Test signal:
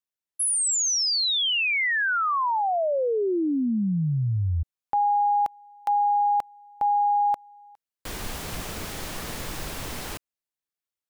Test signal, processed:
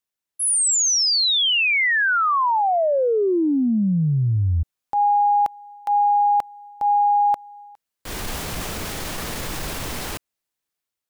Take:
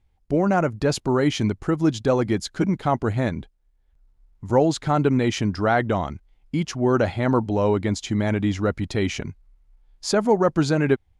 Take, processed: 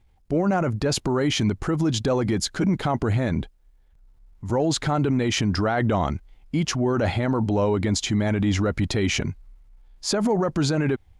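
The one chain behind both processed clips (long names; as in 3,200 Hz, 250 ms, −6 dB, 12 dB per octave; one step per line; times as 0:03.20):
transient designer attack −5 dB, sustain +3 dB
brickwall limiter −19 dBFS
level +5 dB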